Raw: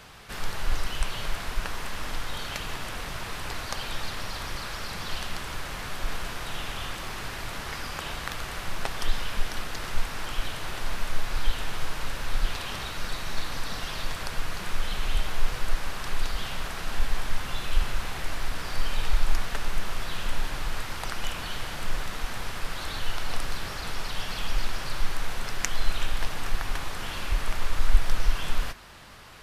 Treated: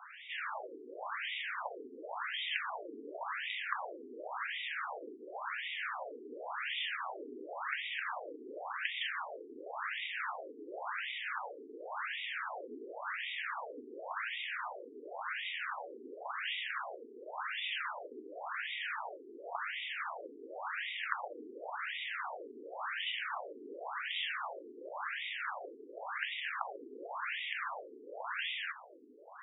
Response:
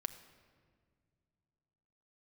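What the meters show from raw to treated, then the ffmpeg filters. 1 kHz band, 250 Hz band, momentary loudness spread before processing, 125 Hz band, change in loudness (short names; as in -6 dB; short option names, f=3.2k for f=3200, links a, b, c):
-4.0 dB, -10.5 dB, 4 LU, under -40 dB, -6.0 dB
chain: -filter_complex "[0:a]acrossover=split=380|650|4100[a][b][c][d];[a]acompressor=threshold=-32dB:ratio=6[e];[b]acrusher=bits=2:mode=log:mix=0:aa=0.000001[f];[e][f][c][d]amix=inputs=4:normalize=0,afftfilt=real='re*between(b*sr/1024,320*pow(2700/320,0.5+0.5*sin(2*PI*0.92*pts/sr))/1.41,320*pow(2700/320,0.5+0.5*sin(2*PI*0.92*pts/sr))*1.41)':imag='im*between(b*sr/1024,320*pow(2700/320,0.5+0.5*sin(2*PI*0.92*pts/sr))/1.41,320*pow(2700/320,0.5+0.5*sin(2*PI*0.92*pts/sr))*1.41)':win_size=1024:overlap=0.75,volume=3dB"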